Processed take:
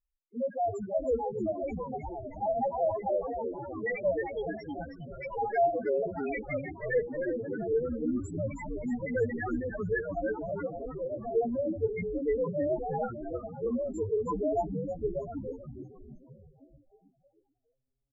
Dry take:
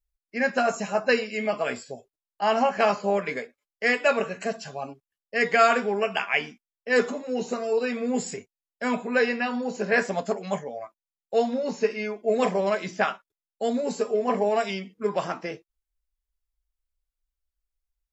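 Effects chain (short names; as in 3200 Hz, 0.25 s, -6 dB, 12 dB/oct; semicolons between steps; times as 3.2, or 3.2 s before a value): echoes that change speed 0.692 s, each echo +3 st, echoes 3, each echo -6 dB; loudest bins only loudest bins 1; frequency-shifting echo 0.315 s, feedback 57%, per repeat -140 Hz, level -7 dB; gain +1 dB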